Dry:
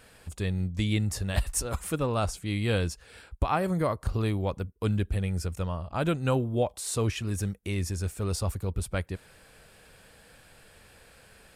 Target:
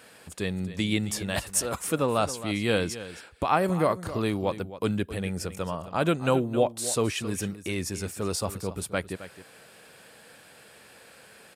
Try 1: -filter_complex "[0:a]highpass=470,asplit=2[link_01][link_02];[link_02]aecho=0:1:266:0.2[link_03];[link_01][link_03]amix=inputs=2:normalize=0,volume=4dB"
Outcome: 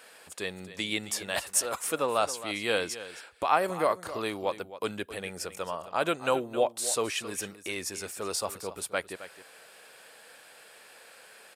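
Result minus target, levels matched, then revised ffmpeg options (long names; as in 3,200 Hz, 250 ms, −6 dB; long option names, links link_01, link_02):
250 Hz band −7.0 dB
-filter_complex "[0:a]highpass=180,asplit=2[link_01][link_02];[link_02]aecho=0:1:266:0.2[link_03];[link_01][link_03]amix=inputs=2:normalize=0,volume=4dB"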